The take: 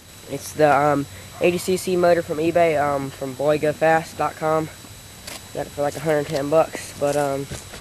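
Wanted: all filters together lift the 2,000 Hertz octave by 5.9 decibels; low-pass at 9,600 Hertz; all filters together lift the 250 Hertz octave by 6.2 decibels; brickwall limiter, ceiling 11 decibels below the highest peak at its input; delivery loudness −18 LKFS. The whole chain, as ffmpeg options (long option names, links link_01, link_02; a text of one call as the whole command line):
ffmpeg -i in.wav -af "lowpass=9600,equalizer=frequency=250:width_type=o:gain=9,equalizer=frequency=2000:width_type=o:gain=7.5,volume=5dB,alimiter=limit=-6dB:level=0:latency=1" out.wav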